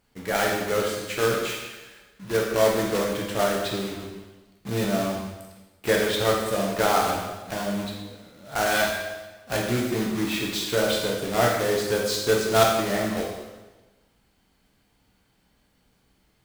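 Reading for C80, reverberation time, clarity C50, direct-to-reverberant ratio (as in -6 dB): 4.5 dB, 1.2 s, 2.5 dB, -2.5 dB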